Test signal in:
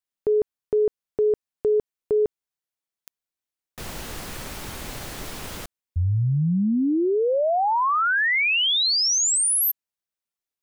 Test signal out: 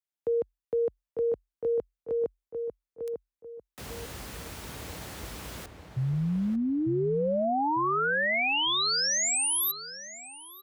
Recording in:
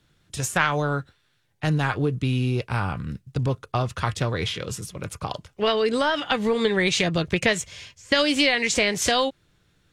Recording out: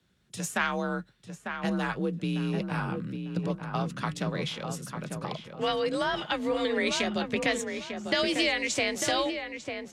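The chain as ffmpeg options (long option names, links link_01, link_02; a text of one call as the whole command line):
ffmpeg -i in.wav -filter_complex "[0:a]asplit=2[link_01][link_02];[link_02]adelay=898,lowpass=frequency=1900:poles=1,volume=-6dB,asplit=2[link_03][link_04];[link_04]adelay=898,lowpass=frequency=1900:poles=1,volume=0.32,asplit=2[link_05][link_06];[link_06]adelay=898,lowpass=frequency=1900:poles=1,volume=0.32,asplit=2[link_07][link_08];[link_08]adelay=898,lowpass=frequency=1900:poles=1,volume=0.32[link_09];[link_01][link_03][link_05][link_07][link_09]amix=inputs=5:normalize=0,afreqshift=43,volume=-6.5dB" out.wav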